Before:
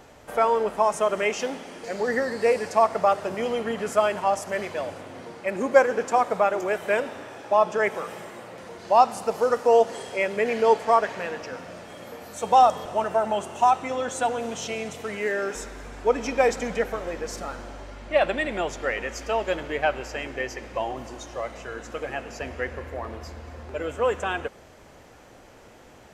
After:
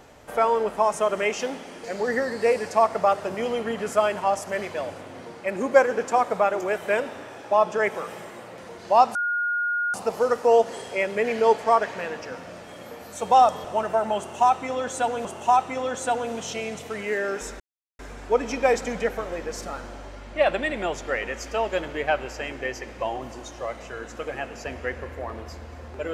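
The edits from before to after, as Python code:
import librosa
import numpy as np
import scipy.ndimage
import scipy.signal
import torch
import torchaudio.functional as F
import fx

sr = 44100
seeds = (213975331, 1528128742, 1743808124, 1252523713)

y = fx.edit(x, sr, fx.insert_tone(at_s=9.15, length_s=0.79, hz=1430.0, db=-22.0),
    fx.repeat(start_s=13.39, length_s=1.07, count=2),
    fx.insert_silence(at_s=15.74, length_s=0.39), tone=tone)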